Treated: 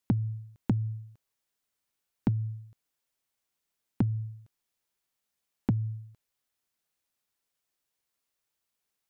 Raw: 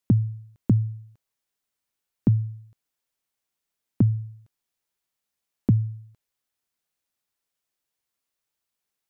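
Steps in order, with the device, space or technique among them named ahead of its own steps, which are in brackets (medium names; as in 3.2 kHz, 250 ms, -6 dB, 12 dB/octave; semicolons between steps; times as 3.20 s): drum-bus smash (transient shaper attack +5 dB, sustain 0 dB; compression 16:1, threshold -20 dBFS, peak gain reduction 11 dB; saturation -15.5 dBFS, distortion -12 dB)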